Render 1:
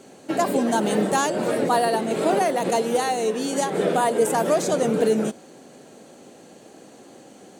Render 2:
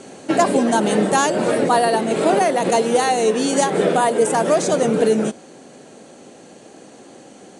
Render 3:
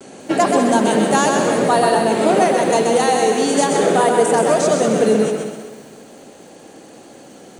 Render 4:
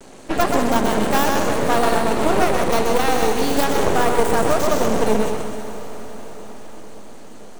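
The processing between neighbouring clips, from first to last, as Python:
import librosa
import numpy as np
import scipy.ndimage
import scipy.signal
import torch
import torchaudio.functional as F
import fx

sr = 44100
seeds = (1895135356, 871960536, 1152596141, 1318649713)

y1 = scipy.signal.sosfilt(scipy.signal.cheby1(10, 1.0, 11000.0, 'lowpass', fs=sr, output='sos'), x)
y1 = fx.rider(y1, sr, range_db=4, speed_s=0.5)
y1 = F.gain(torch.from_numpy(y1), 5.5).numpy()
y2 = fx.echo_feedback(y1, sr, ms=129, feedback_pct=45, wet_db=-4.5)
y2 = fx.vibrato(y2, sr, rate_hz=0.34, depth_cents=22.0)
y2 = fx.echo_crushed(y2, sr, ms=194, feedback_pct=35, bits=7, wet_db=-10)
y3 = fx.tracing_dist(y2, sr, depth_ms=0.16)
y3 = np.maximum(y3, 0.0)
y3 = fx.echo_diffused(y3, sr, ms=506, feedback_pct=60, wet_db=-14.5)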